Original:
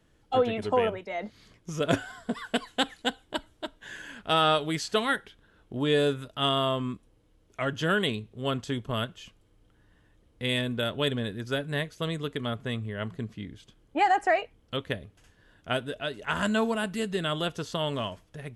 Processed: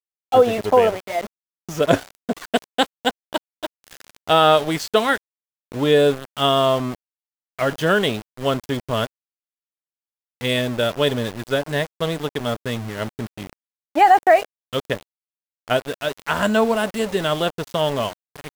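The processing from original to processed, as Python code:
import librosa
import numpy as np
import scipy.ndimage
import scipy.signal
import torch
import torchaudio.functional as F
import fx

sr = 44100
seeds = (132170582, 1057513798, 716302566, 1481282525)

y = np.where(np.abs(x) >= 10.0 ** (-35.0 / 20.0), x, 0.0)
y = fx.dynamic_eq(y, sr, hz=630.0, q=0.96, threshold_db=-38.0, ratio=4.0, max_db=6)
y = F.gain(torch.from_numpy(y), 5.5).numpy()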